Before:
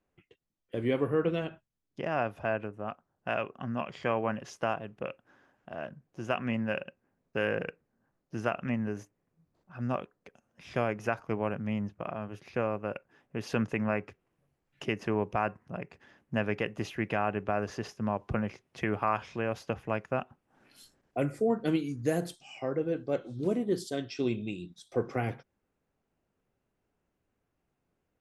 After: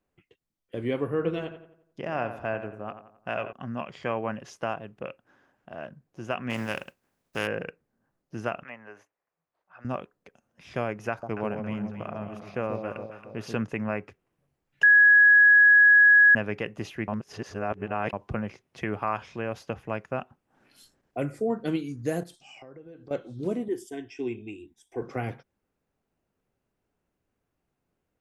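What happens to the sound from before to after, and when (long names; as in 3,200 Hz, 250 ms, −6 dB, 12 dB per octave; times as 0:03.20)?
0:01.10–0:03.53: feedback echo with a low-pass in the loop 88 ms, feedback 45%, low-pass 2,900 Hz, level −10 dB
0:06.49–0:07.46: compressing power law on the bin magnitudes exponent 0.58
0:08.63–0:09.85: three-way crossover with the lows and the highs turned down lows −24 dB, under 560 Hz, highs −13 dB, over 3,100 Hz
0:11.09–0:13.60: delay that swaps between a low-pass and a high-pass 137 ms, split 860 Hz, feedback 66%, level −5 dB
0:14.83–0:16.35: beep over 1,670 Hz −12.5 dBFS
0:17.08–0:18.13: reverse
0:22.23–0:23.11: downward compressor, threshold −44 dBFS
0:23.68–0:25.02: phaser with its sweep stopped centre 850 Hz, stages 8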